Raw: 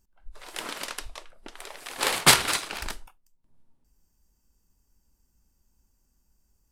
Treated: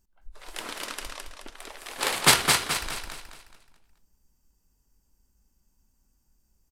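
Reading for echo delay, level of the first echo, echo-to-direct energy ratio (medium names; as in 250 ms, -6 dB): 214 ms, -4.5 dB, -4.0 dB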